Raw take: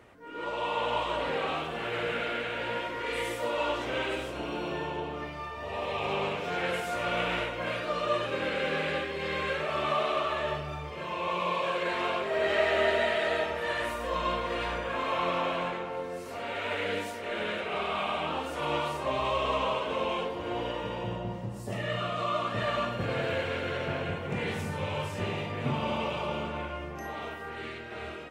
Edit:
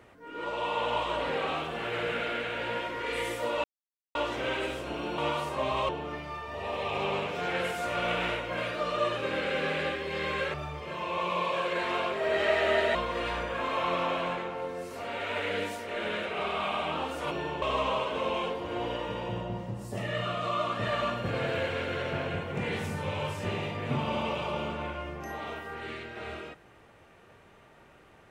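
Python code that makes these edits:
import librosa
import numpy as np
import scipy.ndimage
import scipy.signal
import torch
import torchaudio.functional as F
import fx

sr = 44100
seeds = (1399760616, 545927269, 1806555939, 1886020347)

y = fx.edit(x, sr, fx.insert_silence(at_s=3.64, length_s=0.51),
    fx.swap(start_s=4.67, length_s=0.31, other_s=18.66, other_length_s=0.71),
    fx.cut(start_s=9.63, length_s=1.01),
    fx.cut(start_s=13.05, length_s=1.25), tone=tone)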